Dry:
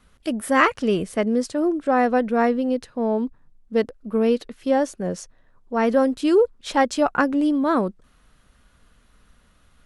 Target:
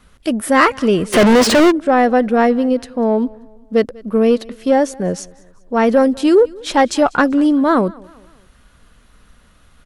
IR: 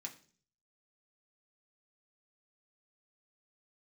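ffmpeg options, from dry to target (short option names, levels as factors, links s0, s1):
-filter_complex "[0:a]acontrast=87,aecho=1:1:194|388|582:0.0631|0.0278|0.0122,asplit=3[s0][s1][s2];[s0]afade=t=out:st=1.12:d=0.02[s3];[s1]asplit=2[s4][s5];[s5]highpass=f=720:p=1,volume=112,asoftclip=type=tanh:threshold=0.668[s6];[s4][s6]amix=inputs=2:normalize=0,lowpass=f=2900:p=1,volume=0.501,afade=t=in:st=1.12:d=0.02,afade=t=out:st=1.7:d=0.02[s7];[s2]afade=t=in:st=1.7:d=0.02[s8];[s3][s7][s8]amix=inputs=3:normalize=0"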